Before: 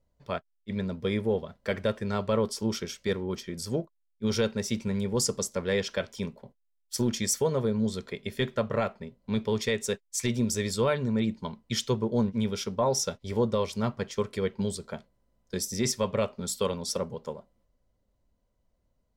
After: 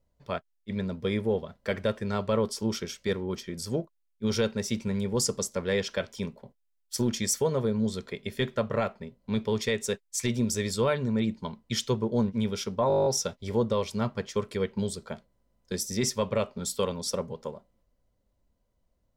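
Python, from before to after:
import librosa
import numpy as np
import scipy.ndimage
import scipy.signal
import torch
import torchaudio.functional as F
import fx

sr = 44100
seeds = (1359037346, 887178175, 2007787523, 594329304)

y = fx.edit(x, sr, fx.stutter(start_s=12.88, slice_s=0.02, count=10), tone=tone)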